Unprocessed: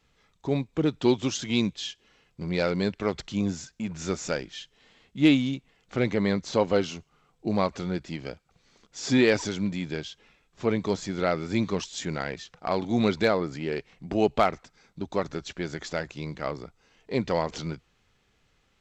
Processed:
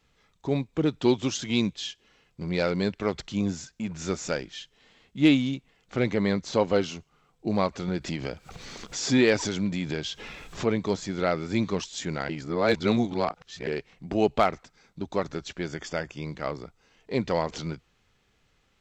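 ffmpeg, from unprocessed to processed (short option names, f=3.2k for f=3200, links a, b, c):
-filter_complex "[0:a]asettb=1/sr,asplit=3[a][b][c];[a]atrim=end=7.884[d];[b]atrim=start=7.88:end=10.69,asetpts=PTS-STARTPTS,afade=t=in:d=0.004:c=qsin,afade=t=out:st=2.806:d=0.004:c=qsin,acompressor=mode=upward:threshold=-23dB:ratio=2.5:attack=3.2:release=140:knee=2.83:detection=peak[e];[c]atrim=start=10.686[f];[d][e]acrossfade=d=0.004:c1=hsin:c2=qsin[g];[g][f]acrossfade=d=0.004:c1=qsin:c2=hsin,asettb=1/sr,asplit=3[h][i][j];[h]atrim=end=15.684[k];[i]atrim=start=15.68:end=16.25,asetpts=PTS-STARTPTS,afade=t=in:d=0.004:c=qsin,afade=t=out:st=0.566:d=0.004:c=qsin,asuperstop=centerf=4000:order=8:qfactor=6.4[l];[j]atrim=start=16.246[m];[k][l]acrossfade=d=0.004:c1=hsin:c2=qsin[n];[n][m]acrossfade=d=0.004:c1=qsin:c2=hsin,asplit=3[o][p][q];[o]atrim=end=12.292[r];[p]atrim=start=12.288:end=13.672,asetpts=PTS-STARTPTS,areverse[s];[q]atrim=start=13.668[t];[r][s]acrossfade=d=0.004:c1=hsin:c2=hsin[u];[u][t]acrossfade=d=0.004:c1=hsin:c2=hsin"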